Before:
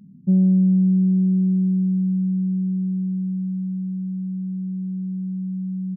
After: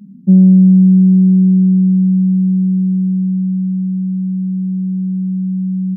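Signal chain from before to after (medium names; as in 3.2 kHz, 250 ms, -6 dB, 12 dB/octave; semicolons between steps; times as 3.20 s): resonant low shelf 160 Hz -6.5 dB, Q 3; trim +5.5 dB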